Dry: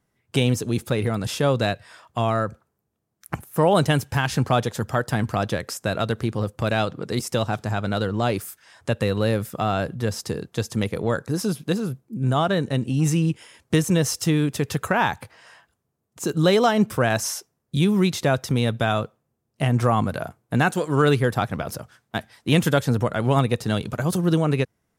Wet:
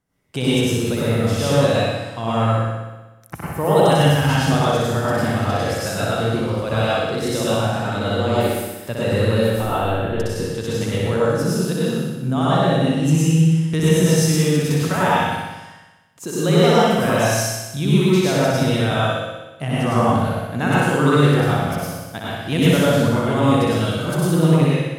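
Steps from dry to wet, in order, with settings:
0:09.50–0:10.20: linear-prediction vocoder at 8 kHz pitch kept
flutter between parallel walls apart 10.6 metres, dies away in 1.1 s
dense smooth reverb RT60 0.62 s, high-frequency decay 0.95×, pre-delay 85 ms, DRR −6 dB
level −5 dB

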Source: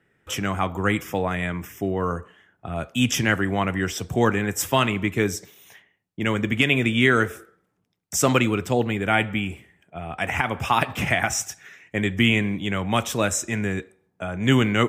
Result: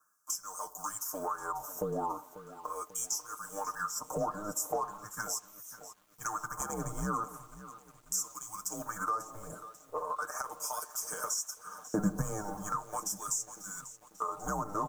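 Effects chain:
mu-law and A-law mismatch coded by A
auto-filter high-pass sine 0.39 Hz 750–3,900 Hz
frequency shifter −210 Hz
comb filter 6.6 ms, depth 97%
soft clipping −10 dBFS, distortion −15 dB
elliptic band-stop filter 1,200–6,100 Hz, stop band 40 dB
downward compressor 5 to 1, threshold −43 dBFS, peak gain reduction 24.5 dB
0:11.08–0:12.22: parametric band 210 Hz +14.5 dB 0.95 octaves
feedback echo at a low word length 542 ms, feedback 55%, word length 10 bits, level −15 dB
level +8.5 dB

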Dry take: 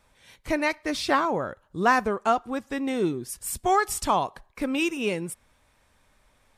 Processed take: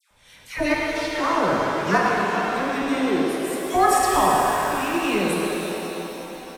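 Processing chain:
in parallel at −3 dB: brickwall limiter −15.5 dBFS, peak gain reduction 8 dB
0:02.96–0:03.61: on the sum: high-pass filter 340 Hz 6 dB per octave
all-pass dispersion lows, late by 108 ms, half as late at 1,400 Hz
square-wave tremolo 0.81 Hz, depth 65%, duty 60%
far-end echo of a speakerphone 110 ms, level −6 dB
reverb with rising layers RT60 3.8 s, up +7 semitones, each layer −8 dB, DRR −2.5 dB
level −3 dB

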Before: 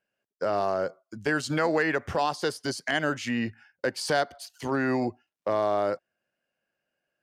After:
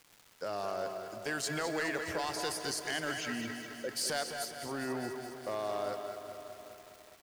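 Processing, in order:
0:03.17–0:03.89: spectral envelope exaggerated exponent 2
first-order pre-emphasis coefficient 0.8
in parallel at −9 dB: wave folding −33.5 dBFS
on the sum: surface crackle 500 per second −46 dBFS
0:04.51–0:05.04: high-frequency loss of the air 340 metres
far-end echo of a speakerphone 210 ms, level −6 dB
on a send at −12 dB: convolution reverb RT60 2.9 s, pre-delay 113 ms
on the sum: feedback echo at a low word length 207 ms, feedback 80%, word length 9 bits, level −11 dB

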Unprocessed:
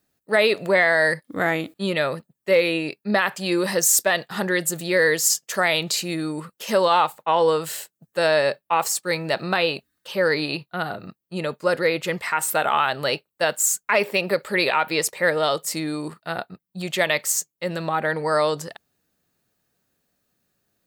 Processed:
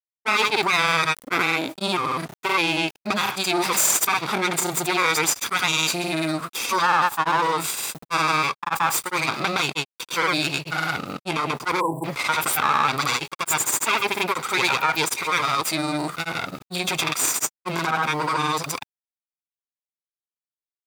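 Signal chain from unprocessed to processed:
lower of the sound and its delayed copy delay 0.84 ms
high-pass filter 140 Hz 24 dB per octave
parametric band 190 Hz −13 dB 0.66 octaves
bit reduction 10 bits
granular cloud, grains 20 per second, spray 100 ms, pitch spread up and down by 0 semitones
time-frequency box erased 0:11.80–0:12.05, 1,100–7,500 Hz
envelope flattener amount 50%
level +1.5 dB

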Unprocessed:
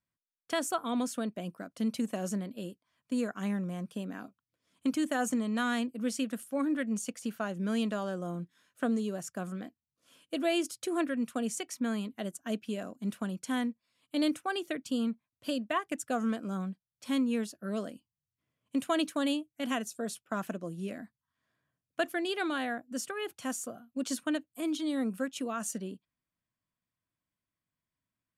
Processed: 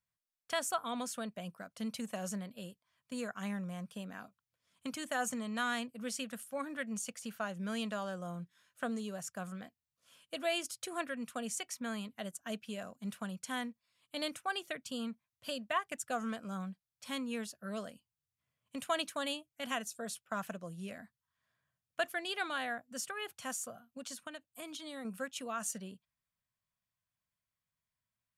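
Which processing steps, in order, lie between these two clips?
parametric band 310 Hz −14 dB 0.97 octaves
0:23.85–0:25.05: downward compressor 6 to 1, threshold −41 dBFS, peak gain reduction 9 dB
level −1 dB

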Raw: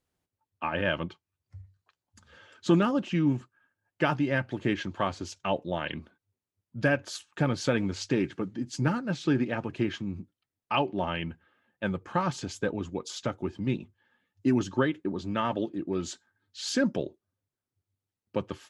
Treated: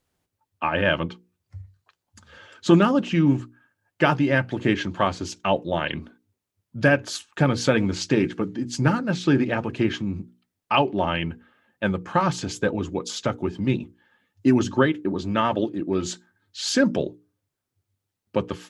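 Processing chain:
mains-hum notches 60/120/180/240/300/360/420/480 Hz
level +7 dB

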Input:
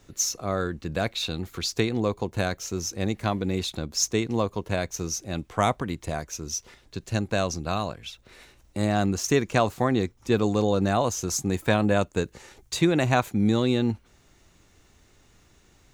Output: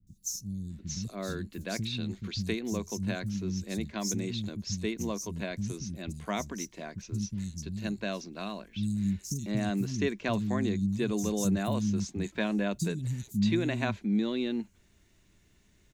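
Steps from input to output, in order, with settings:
thirty-one-band graphic EQ 200 Hz +9 dB, 500 Hz −7 dB, 800 Hz −10 dB, 1,250 Hz −9 dB
three-band delay without the direct sound lows, highs, mids 70/700 ms, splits 210/5,400 Hz
level −5.5 dB

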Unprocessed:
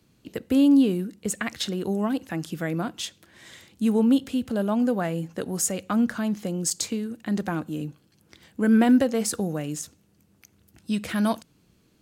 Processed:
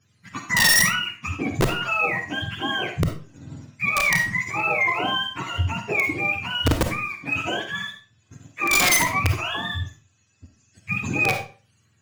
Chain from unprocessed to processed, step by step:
frequency axis turned over on the octave scale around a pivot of 720 Hz
parametric band 6,800 Hz +14.5 dB 0.32 octaves
leveller curve on the samples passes 1
wrap-around overflow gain 14 dB
on a send: convolution reverb RT60 0.35 s, pre-delay 10 ms, DRR 4 dB

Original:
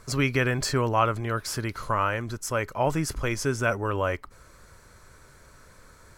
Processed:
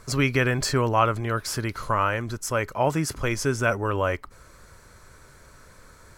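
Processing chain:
0:02.74–0:03.21: high-pass filter 81 Hz
level +2 dB

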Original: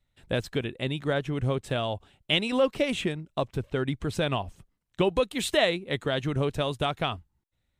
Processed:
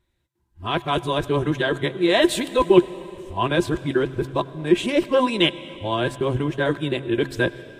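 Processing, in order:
played backwards from end to start
hum removal 133.3 Hz, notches 2
hollow resonant body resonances 350/1,000/1,600 Hz, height 14 dB, ringing for 75 ms
on a send at −16 dB: convolution reverb RT60 3.1 s, pre-delay 84 ms
on the sum: level +3.5 dB
Ogg Vorbis 48 kbit/s 48,000 Hz

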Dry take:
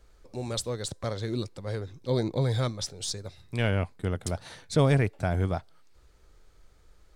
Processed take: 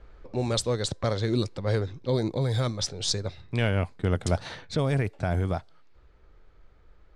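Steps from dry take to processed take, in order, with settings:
brickwall limiter −19.5 dBFS, peak gain reduction 8 dB
low-pass that shuts in the quiet parts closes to 2,400 Hz, open at −24 dBFS
speech leveller within 4 dB 0.5 s
level +4.5 dB

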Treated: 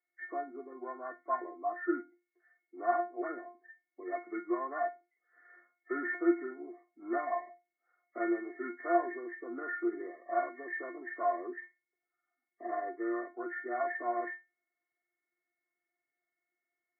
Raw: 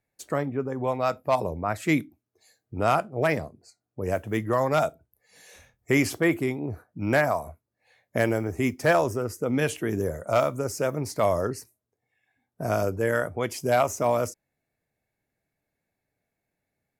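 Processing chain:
hearing-aid frequency compression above 1,100 Hz 4 to 1
Chebyshev high-pass filter 250 Hz, order 5
stiff-string resonator 350 Hz, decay 0.24 s, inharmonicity 0.002
level +5.5 dB

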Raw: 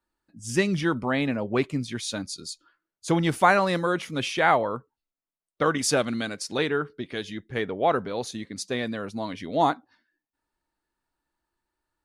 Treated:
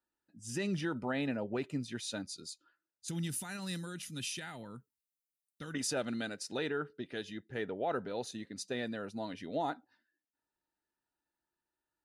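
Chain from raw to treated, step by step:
notch comb filter 1,100 Hz
brickwall limiter −18 dBFS, peak gain reduction 9.5 dB
0:03.08–0:05.74: drawn EQ curve 200 Hz 0 dB, 580 Hz −19 dB, 11,000 Hz +12 dB
level −7.5 dB

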